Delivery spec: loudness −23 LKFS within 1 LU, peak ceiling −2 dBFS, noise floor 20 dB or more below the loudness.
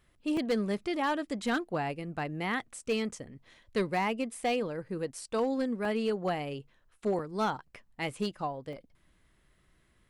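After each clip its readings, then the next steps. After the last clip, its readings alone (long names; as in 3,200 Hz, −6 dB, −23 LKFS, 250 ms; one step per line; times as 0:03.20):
share of clipped samples 0.7%; peaks flattened at −23.0 dBFS; number of dropouts 4; longest dropout 2.5 ms; integrated loudness −33.0 LKFS; sample peak −23.0 dBFS; target loudness −23.0 LKFS
→ clipped peaks rebuilt −23 dBFS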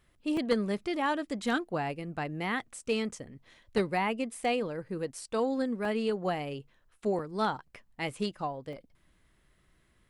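share of clipped samples 0.0%; number of dropouts 4; longest dropout 2.5 ms
→ repair the gap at 0:00.37/0:05.85/0:07.19/0:08.73, 2.5 ms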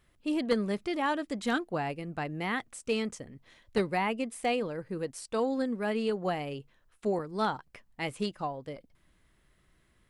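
number of dropouts 0; integrated loudness −32.5 LKFS; sample peak −14.0 dBFS; target loudness −23.0 LKFS
→ level +9.5 dB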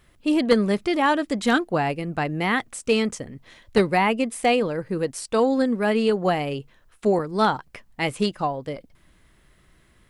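integrated loudness −23.0 LKFS; sample peak −4.5 dBFS; background noise floor −59 dBFS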